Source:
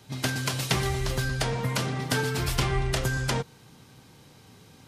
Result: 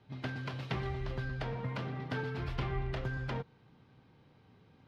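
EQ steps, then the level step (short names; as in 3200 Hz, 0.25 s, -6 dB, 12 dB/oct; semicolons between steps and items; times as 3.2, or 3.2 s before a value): air absorption 330 m; -8.5 dB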